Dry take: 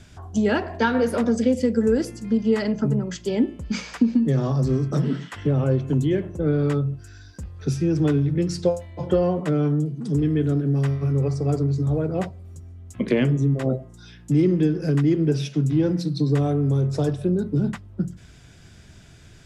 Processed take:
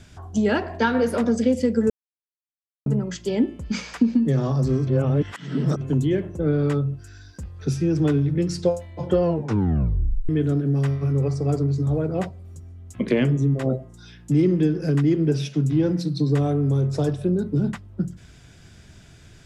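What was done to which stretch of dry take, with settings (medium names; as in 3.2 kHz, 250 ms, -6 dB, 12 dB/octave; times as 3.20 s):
1.90–2.86 s: mute
4.87–5.81 s: reverse
9.24 s: tape stop 1.05 s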